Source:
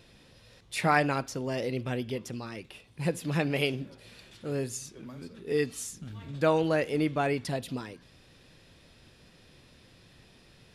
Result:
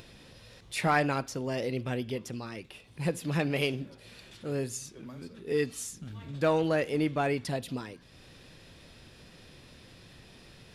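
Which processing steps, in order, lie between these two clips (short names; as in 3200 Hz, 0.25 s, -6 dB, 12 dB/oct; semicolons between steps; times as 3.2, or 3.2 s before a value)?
in parallel at -4.5 dB: hard clip -22 dBFS, distortion -13 dB; on the sum: upward compressor, threshold -41 dBFS; gain -4.5 dB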